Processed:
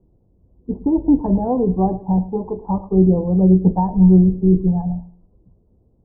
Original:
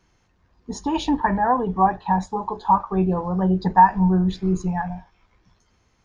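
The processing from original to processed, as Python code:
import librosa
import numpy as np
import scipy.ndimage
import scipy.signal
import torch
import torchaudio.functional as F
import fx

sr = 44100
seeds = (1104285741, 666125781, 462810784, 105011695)

y = fx.wiener(x, sr, points=9)
y = scipy.signal.sosfilt(scipy.signal.cheby2(4, 80, 3200.0, 'lowpass', fs=sr, output='sos'), y)
y = fx.echo_feedback(y, sr, ms=108, feedback_pct=27, wet_db=-17)
y = F.gain(torch.from_numpy(y), 7.5).numpy()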